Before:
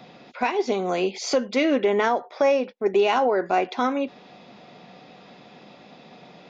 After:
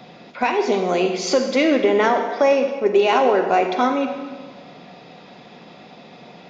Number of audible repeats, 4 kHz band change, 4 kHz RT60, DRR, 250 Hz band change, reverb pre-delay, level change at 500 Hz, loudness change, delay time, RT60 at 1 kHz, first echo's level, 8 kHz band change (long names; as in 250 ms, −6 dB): no echo audible, +4.5 dB, 1.2 s, 5.5 dB, +4.5 dB, 40 ms, +4.5 dB, +4.5 dB, no echo audible, 1.4 s, no echo audible, can't be measured